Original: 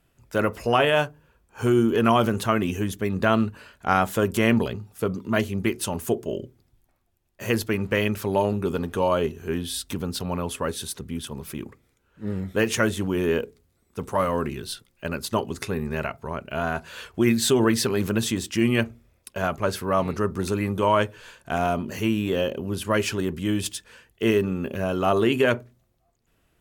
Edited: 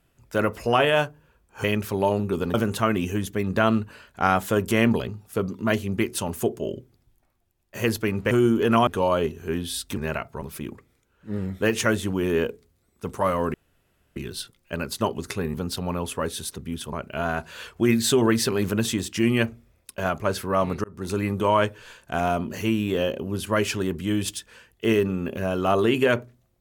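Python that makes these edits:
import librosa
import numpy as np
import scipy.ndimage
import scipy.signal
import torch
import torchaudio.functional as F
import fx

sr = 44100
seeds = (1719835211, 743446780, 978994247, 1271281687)

y = fx.edit(x, sr, fx.swap(start_s=1.64, length_s=0.56, other_s=7.97, other_length_s=0.9),
    fx.swap(start_s=9.97, length_s=1.39, other_s=15.86, other_length_s=0.45),
    fx.insert_room_tone(at_s=14.48, length_s=0.62),
    fx.fade_in_span(start_s=20.22, length_s=0.34), tone=tone)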